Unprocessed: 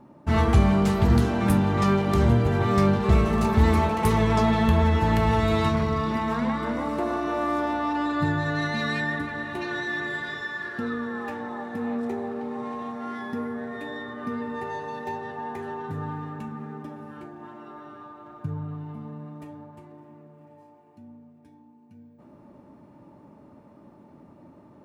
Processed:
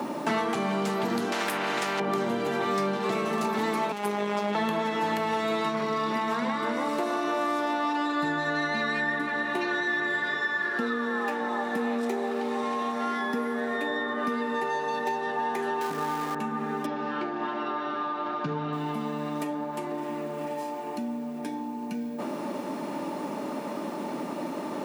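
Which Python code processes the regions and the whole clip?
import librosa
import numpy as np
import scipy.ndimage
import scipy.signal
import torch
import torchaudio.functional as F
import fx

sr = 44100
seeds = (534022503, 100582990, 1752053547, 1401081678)

y = fx.chain(x, sr, fx.low_shelf(hz=370.0, db=8.5),
    fx.level_steps(step_db=22),
    fx.spectral_comp(ratio=4.0), at=(1.32, 2.0))
y = fx.chain(y, sr, fx.halfwave_gain(db=-12.0),
    fx.robotise(hz=205.0), at=(3.92, 4.55))
y = fx.chain(y, sr, fx.zero_step(step_db=-38.0),
    fx.highpass(hz=230.0, slope=6), at=(15.81, 16.35))
y = fx.chain(y, sr, fx.lowpass(hz=4900.0, slope=24),
    fx.room_flutter(wall_m=11.9, rt60_s=0.25), at=(16.86, 18.73))
y = scipy.signal.sosfilt(scipy.signal.bessel(8, 300.0, 'highpass', norm='mag', fs=sr, output='sos'), y)
y = fx.band_squash(y, sr, depth_pct=100)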